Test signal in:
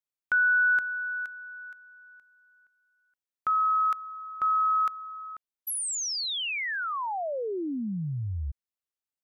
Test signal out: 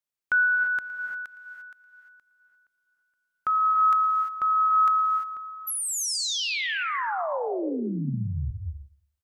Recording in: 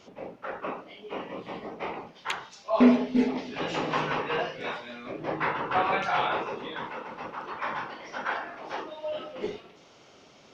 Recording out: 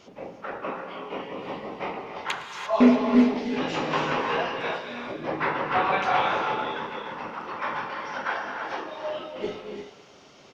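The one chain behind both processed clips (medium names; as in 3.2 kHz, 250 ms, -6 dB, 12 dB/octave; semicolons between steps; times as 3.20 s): feedback delay 113 ms, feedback 32%, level -18.5 dB; gated-style reverb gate 370 ms rising, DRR 4 dB; trim +1.5 dB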